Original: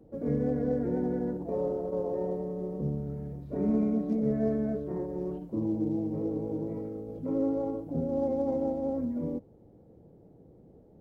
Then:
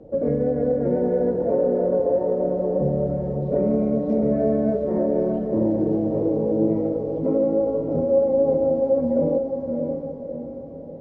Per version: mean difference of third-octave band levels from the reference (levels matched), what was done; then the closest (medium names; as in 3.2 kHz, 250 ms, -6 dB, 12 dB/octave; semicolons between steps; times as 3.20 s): 4.0 dB: peaking EQ 570 Hz +11.5 dB 0.56 oct; compression, threshold -26 dBFS, peak gain reduction 9 dB; distance through air 96 m; echo that smears into a reverb 646 ms, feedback 45%, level -4.5 dB; trim +8 dB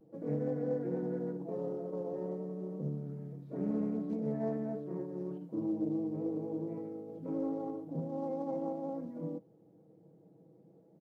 2.0 dB: high-pass 130 Hz 24 dB/octave; comb 6.2 ms, depth 53%; vibrato 0.48 Hz 19 cents; loudspeaker Doppler distortion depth 0.22 ms; trim -6.5 dB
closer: second